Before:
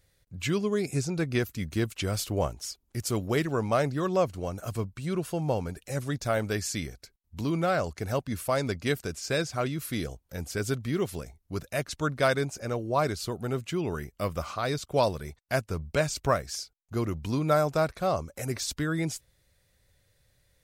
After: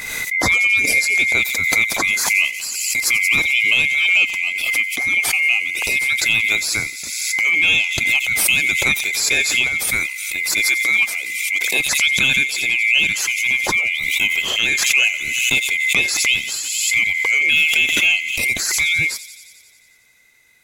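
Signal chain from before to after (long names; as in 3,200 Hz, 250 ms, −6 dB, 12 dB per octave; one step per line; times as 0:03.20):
neighbouring bands swapped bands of 2,000 Hz
0:10.65–0:11.80: high-pass filter 250 Hz 12 dB per octave
on a send: delay with a high-pass on its return 89 ms, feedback 71%, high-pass 5,100 Hz, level −9 dB
on the sum: boost into a limiter +15.5 dB
background raised ahead of every attack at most 30 dB per second
level −5 dB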